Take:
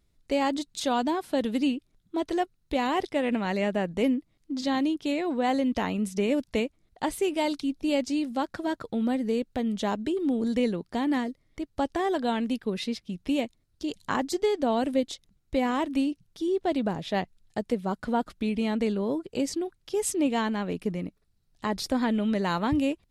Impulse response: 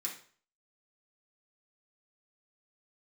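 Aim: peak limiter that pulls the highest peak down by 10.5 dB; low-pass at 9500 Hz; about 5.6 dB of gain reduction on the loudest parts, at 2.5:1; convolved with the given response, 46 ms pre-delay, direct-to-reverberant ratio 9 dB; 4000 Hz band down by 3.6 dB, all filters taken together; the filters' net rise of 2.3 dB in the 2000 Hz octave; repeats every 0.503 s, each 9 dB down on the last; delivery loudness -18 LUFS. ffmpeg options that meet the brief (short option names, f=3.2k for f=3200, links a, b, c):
-filter_complex "[0:a]lowpass=9.5k,equalizer=f=2k:t=o:g=4.5,equalizer=f=4k:t=o:g=-7,acompressor=threshold=-29dB:ratio=2.5,alimiter=level_in=3dB:limit=-24dB:level=0:latency=1,volume=-3dB,aecho=1:1:503|1006|1509|2012:0.355|0.124|0.0435|0.0152,asplit=2[a][b];[1:a]atrim=start_sample=2205,adelay=46[c];[b][c]afir=irnorm=-1:irlink=0,volume=-9.5dB[d];[a][d]amix=inputs=2:normalize=0,volume=17.5dB"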